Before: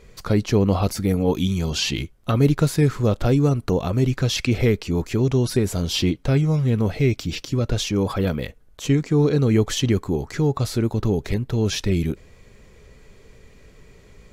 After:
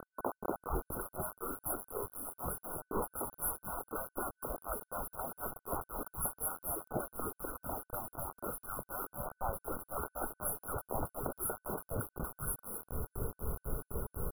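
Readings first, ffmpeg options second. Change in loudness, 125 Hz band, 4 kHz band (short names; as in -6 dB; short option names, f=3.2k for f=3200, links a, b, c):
-18.5 dB, -26.5 dB, under -40 dB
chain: -filter_complex "[0:a]equalizer=f=5.1k:w=0.36:g=13,afftfilt=real='re*lt(hypot(re,im),0.0891)':imag='im*lt(hypot(re,im),0.0891)':win_size=1024:overlap=0.75,lowshelf=f=420:g=5.5,acrossover=split=230|1100[a][b][c];[a]adelay=700[d];[c]adelay=750[e];[d][b][e]amix=inputs=3:normalize=0,acompressor=threshold=-38dB:ratio=5,bandreject=f=95.08:t=h:w=4,bandreject=f=190.16:t=h:w=4,bandreject=f=285.24:t=h:w=4,tremolo=f=4:d=0.94,acrusher=bits=7:mix=0:aa=0.000001,afftfilt=real='re*(1-between(b*sr/4096,1500,10000))':imag='im*(1-between(b*sr/4096,1500,10000))':win_size=4096:overlap=0.75,volume=10dB"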